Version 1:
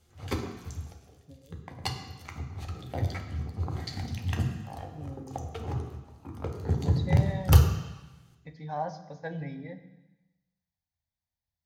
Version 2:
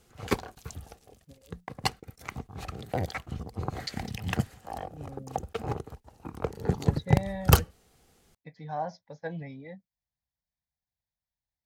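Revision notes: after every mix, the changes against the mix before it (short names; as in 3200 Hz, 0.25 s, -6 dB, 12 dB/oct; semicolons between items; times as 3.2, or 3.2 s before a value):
background +7.0 dB; reverb: off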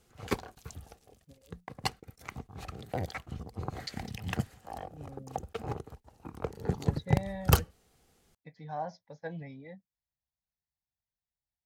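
speech -3.5 dB; background -4.0 dB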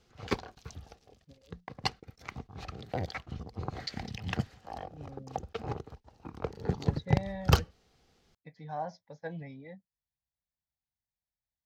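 background: add resonant high shelf 7000 Hz -11 dB, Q 1.5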